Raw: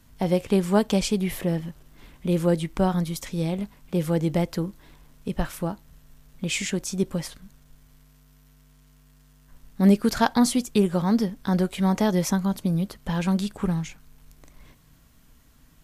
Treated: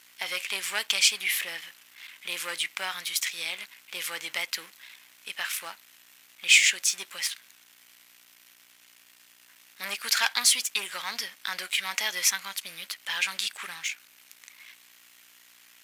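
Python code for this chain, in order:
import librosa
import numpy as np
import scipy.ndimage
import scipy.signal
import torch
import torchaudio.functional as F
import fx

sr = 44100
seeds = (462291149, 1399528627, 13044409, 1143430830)

y = fx.add_hum(x, sr, base_hz=60, snr_db=13)
y = fx.leveller(y, sr, passes=2)
y = fx.highpass_res(y, sr, hz=2200.0, q=1.7)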